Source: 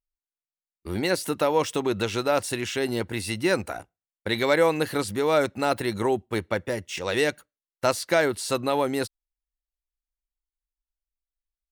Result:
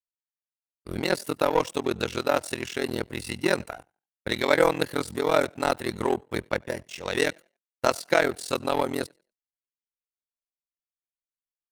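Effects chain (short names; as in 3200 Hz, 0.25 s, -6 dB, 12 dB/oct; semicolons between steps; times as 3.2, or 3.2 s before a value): frequency-shifting echo 90 ms, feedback 35%, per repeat +33 Hz, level -21.5 dB; ring modulator 21 Hz; power-law curve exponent 1.4; gain +5.5 dB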